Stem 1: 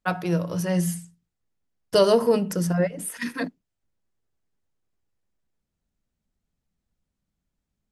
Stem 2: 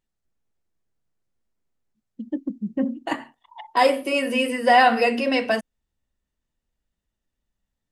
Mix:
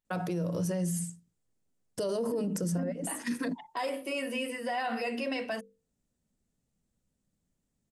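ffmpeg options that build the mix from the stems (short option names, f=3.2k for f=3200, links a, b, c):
-filter_complex "[0:a]equalizer=f=125:t=o:w=1:g=6,equalizer=f=250:t=o:w=1:g=7,equalizer=f=500:t=o:w=1:g=7,equalizer=f=8k:t=o:w=1:g=11,alimiter=limit=-10dB:level=0:latency=1:release=149,adelay=50,volume=-4.5dB[a];[1:a]highshelf=f=8.5k:g=5,bandreject=f=50:t=h:w=6,bandreject=f=100:t=h:w=6,bandreject=f=150:t=h:w=6,bandreject=f=200:t=h:w=6,bandreject=f=250:t=h:w=6,bandreject=f=300:t=h:w=6,bandreject=f=350:t=h:w=6,bandreject=f=400:t=h:w=6,bandreject=f=450:t=h:w=6,bandreject=f=500:t=h:w=6,volume=-9.5dB,asplit=2[b][c];[c]apad=whole_len=351177[d];[a][d]sidechaincompress=threshold=-37dB:ratio=8:attack=29:release=444[e];[e][b]amix=inputs=2:normalize=0,alimiter=level_in=0.5dB:limit=-24dB:level=0:latency=1:release=47,volume=-0.5dB"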